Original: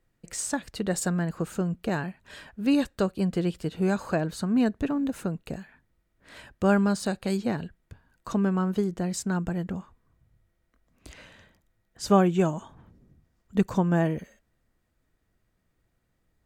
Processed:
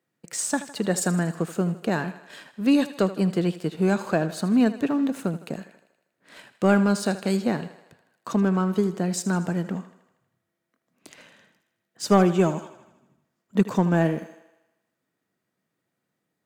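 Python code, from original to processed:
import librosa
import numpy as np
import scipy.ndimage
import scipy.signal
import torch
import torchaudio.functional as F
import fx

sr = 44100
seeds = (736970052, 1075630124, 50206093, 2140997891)

y = scipy.signal.sosfilt(scipy.signal.butter(4, 150.0, 'highpass', fs=sr, output='sos'), x)
y = fx.leveller(y, sr, passes=1)
y = fx.echo_thinned(y, sr, ms=79, feedback_pct=60, hz=250.0, wet_db=-14)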